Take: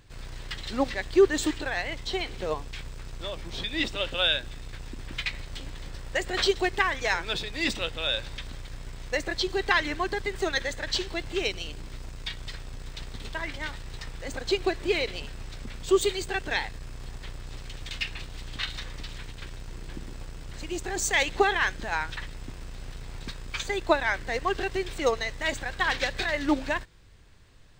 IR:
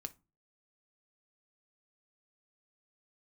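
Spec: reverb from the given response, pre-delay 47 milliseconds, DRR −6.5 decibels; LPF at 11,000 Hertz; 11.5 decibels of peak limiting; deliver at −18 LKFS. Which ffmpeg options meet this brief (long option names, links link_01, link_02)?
-filter_complex "[0:a]lowpass=11000,alimiter=limit=-19dB:level=0:latency=1,asplit=2[link_01][link_02];[1:a]atrim=start_sample=2205,adelay=47[link_03];[link_02][link_03]afir=irnorm=-1:irlink=0,volume=10.5dB[link_04];[link_01][link_04]amix=inputs=2:normalize=0,volume=6.5dB"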